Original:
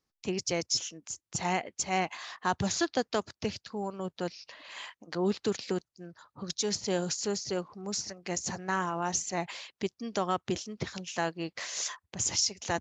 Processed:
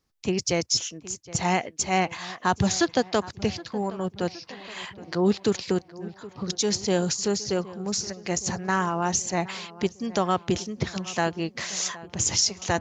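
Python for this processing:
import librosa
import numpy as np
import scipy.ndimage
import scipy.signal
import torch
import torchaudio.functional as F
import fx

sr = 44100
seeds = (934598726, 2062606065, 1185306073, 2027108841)

p1 = fx.low_shelf(x, sr, hz=140.0, db=7.0)
p2 = p1 + fx.echo_filtered(p1, sr, ms=768, feedback_pct=62, hz=2500.0, wet_db=-18.0, dry=0)
y = p2 * 10.0 ** (5.5 / 20.0)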